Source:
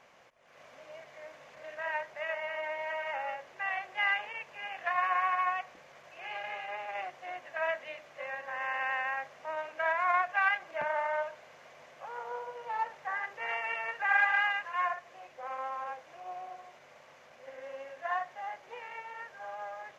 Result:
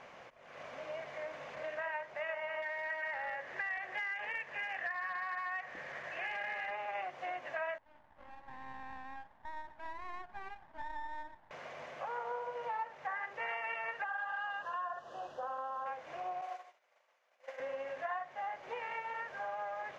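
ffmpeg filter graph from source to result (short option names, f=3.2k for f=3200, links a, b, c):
-filter_complex "[0:a]asettb=1/sr,asplit=3[a][b][c];[a]atrim=end=2.624[d];[b]atrim=start=2.62:end=6.71,asetpts=PTS-STARTPTS,afade=t=in:d=0.004:c=qsin,afade=t=out:st=4.086:d=0.004:c=qsin,acompressor=threshold=-35dB:ratio=8:attack=3.2:release=140:knee=1:detection=peak,asoftclip=type=hard:threshold=-34.5dB,equalizer=f=1.8k:t=o:w=0.33:g=13[e];[c]atrim=start=6.706[f];[d][e]acrossfade=d=0.004:c1=hsin:c2=qsin[g];[g][f]acrossfade=d=0.004:c1=qsin:c2=hsin,asettb=1/sr,asplit=3[h][i][j];[h]atrim=end=7.784[k];[i]atrim=start=7.78:end=11.51,asetpts=PTS-STARTPTS,afade=t=in:d=0.004:c=qsin,afade=t=out:st=3.726:d=0.004:c=qsin,acompressor=threshold=-40dB:ratio=1.5:attack=3.2:release=140:knee=1:detection=peak,bandpass=f=900:t=q:w=10,aeval=exprs='max(val(0),0)':c=same[l];[j]atrim=start=11.506[m];[k][l]acrossfade=d=0.004:c1=hsin:c2=qsin[n];[n][m]acrossfade=d=0.004:c1=qsin:c2=hsin,asettb=1/sr,asplit=3[o][p][q];[o]atrim=end=14.044[r];[p]atrim=start=14.04:end=15.86,asetpts=PTS-STARTPTS,afade=t=in:d=0.004:c=qsin,afade=t=out:st=1.816:d=0.004:c=qsin,asuperstop=centerf=2200:order=4:qfactor=1.8,acompressor=threshold=-36dB:ratio=2:attack=3.2:release=140:knee=1:detection=peak[s];[q]atrim=start=15.856[t];[r][s]acrossfade=d=0.004:c1=hsin:c2=qsin[u];[u][t]acrossfade=d=0.004:c1=qsin:c2=hsin,asettb=1/sr,asplit=3[v][w][x];[v]atrim=end=16.414[y];[w]atrim=start=16.41:end=17.6,asetpts=PTS-STARTPTS,afade=t=in:d=0.004:c=qsin,afade=t=out:st=1.186:d=0.004:c=qsin,agate=range=-33dB:threshold=-43dB:ratio=3:release=100:detection=peak,highpass=530,aemphasis=mode=production:type=cd[z];[x]atrim=start=17.596[aa];[y][z]acrossfade=d=0.004:c1=hsin:c2=qsin[ab];[ab][aa]acrossfade=d=0.004:c1=qsin:c2=hsin,aemphasis=mode=reproduction:type=50fm,acompressor=threshold=-45dB:ratio=4,volume=7dB"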